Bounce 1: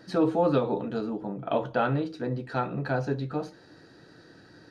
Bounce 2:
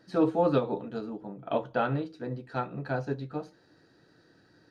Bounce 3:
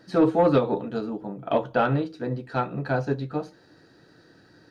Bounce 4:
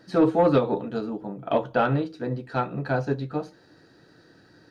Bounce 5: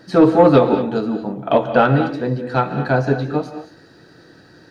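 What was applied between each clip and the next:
upward expansion 1.5:1, over -37 dBFS
saturation -15.5 dBFS, distortion -21 dB; trim +6.5 dB
no audible change
gated-style reverb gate 250 ms rising, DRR 8.5 dB; trim +8 dB

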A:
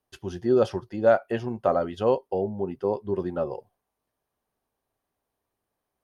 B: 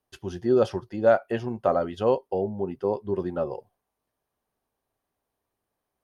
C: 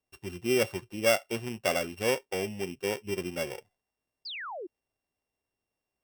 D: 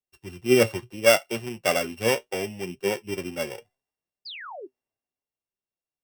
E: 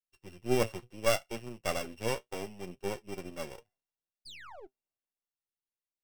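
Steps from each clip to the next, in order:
no audible change
sorted samples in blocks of 16 samples; painted sound fall, 4.25–4.67 s, 320–5200 Hz -33 dBFS; trim -5.5 dB
flange 0.71 Hz, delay 4.8 ms, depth 4.3 ms, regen +61%; three bands expanded up and down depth 40%; trim +8 dB
partial rectifier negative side -12 dB; trim -6.5 dB

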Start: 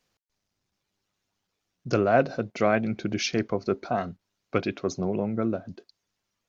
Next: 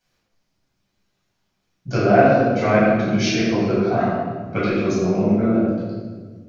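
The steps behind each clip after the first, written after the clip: reverberation RT60 1.5 s, pre-delay 11 ms, DRR -9.5 dB; trim -5 dB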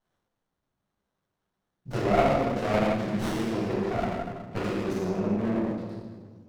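tilt shelf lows -3 dB; sliding maximum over 17 samples; trim -6.5 dB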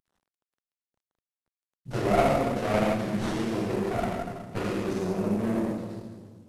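CVSD coder 64 kbps

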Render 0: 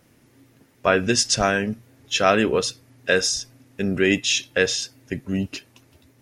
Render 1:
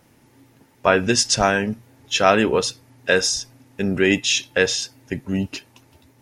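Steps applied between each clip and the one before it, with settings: peaking EQ 880 Hz +8.5 dB 0.26 oct; trim +1.5 dB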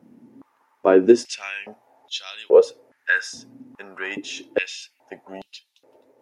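tilt shelf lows +8.5 dB, about 1.3 kHz; step-sequenced high-pass 2.4 Hz 220–3700 Hz; trim -7.5 dB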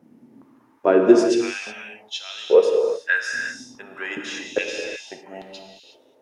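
gated-style reverb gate 390 ms flat, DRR 1.5 dB; trim -1.5 dB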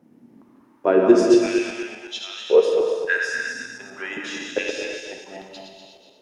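backward echo that repeats 122 ms, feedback 56%, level -5 dB; trim -1.5 dB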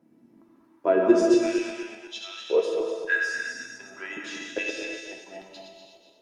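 feedback comb 330 Hz, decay 0.19 s, harmonics all, mix 80%; trim +4.5 dB

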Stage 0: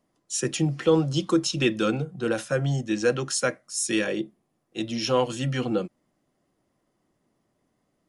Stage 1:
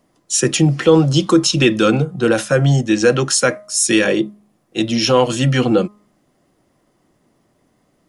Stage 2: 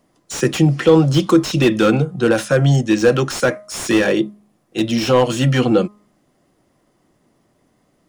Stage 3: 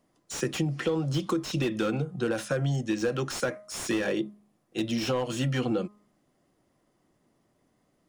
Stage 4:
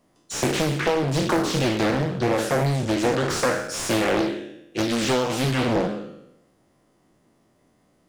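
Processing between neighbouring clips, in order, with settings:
de-hum 207.5 Hz, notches 6; in parallel at +2.5 dB: peak limiter -17 dBFS, peak gain reduction 7.5 dB; on the sum: trim +4.5 dB
slew-rate limiter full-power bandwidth 310 Hz
compression 6:1, threshold -15 dBFS, peak gain reduction 9 dB; trim -9 dB
spectral sustain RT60 0.90 s; loudspeaker Doppler distortion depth 0.91 ms; trim +4.5 dB

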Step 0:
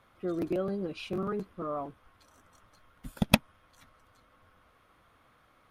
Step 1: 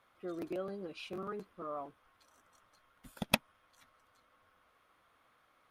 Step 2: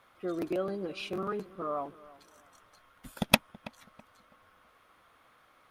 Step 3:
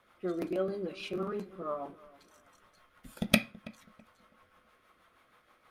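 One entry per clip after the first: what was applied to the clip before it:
bass shelf 260 Hz -11.5 dB; trim -4.5 dB
filtered feedback delay 327 ms, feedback 30%, low-pass 1.6 kHz, level -19 dB; trim +7 dB
rotary cabinet horn 6.3 Hz; on a send at -6 dB: reverberation RT60 0.30 s, pre-delay 3 ms

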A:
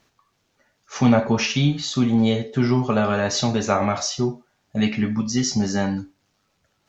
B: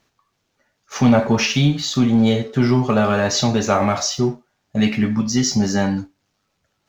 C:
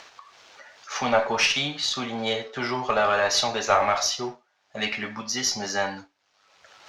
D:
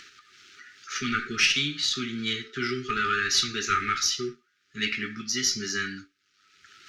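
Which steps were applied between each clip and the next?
waveshaping leveller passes 1
upward compressor, threshold -29 dBFS; three-band isolator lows -22 dB, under 510 Hz, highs -19 dB, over 6.7 kHz; Chebyshev shaper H 4 -24 dB, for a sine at -6 dBFS
brick-wall FIR band-stop 430–1200 Hz

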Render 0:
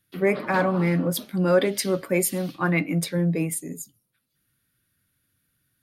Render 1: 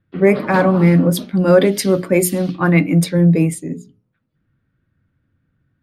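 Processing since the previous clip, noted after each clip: level-controlled noise filter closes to 1.5 kHz, open at -20 dBFS; bass shelf 440 Hz +8 dB; hum notches 60/120/180/240/300/360/420 Hz; trim +5 dB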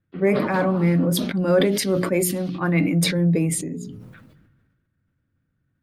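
decay stretcher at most 38 dB/s; trim -7.5 dB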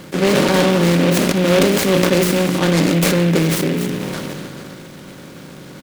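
spectral levelling over time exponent 0.4; resampled via 22.05 kHz; delay time shaken by noise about 2.1 kHz, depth 0.092 ms; trim +1 dB

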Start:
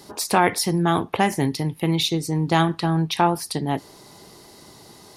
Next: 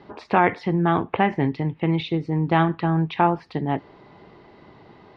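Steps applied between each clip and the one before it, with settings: low-pass 2.7 kHz 24 dB/octave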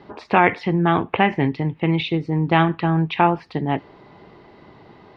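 dynamic bell 2.6 kHz, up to +7 dB, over -43 dBFS, Q 1.9; trim +2 dB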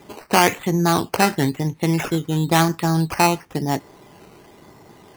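decimation with a swept rate 10×, swing 60% 0.99 Hz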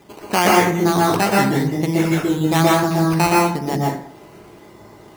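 reverberation RT60 0.60 s, pre-delay 113 ms, DRR -4 dB; trim -2.5 dB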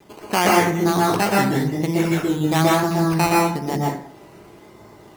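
vibrato 1.1 Hz 36 cents; trim -2 dB

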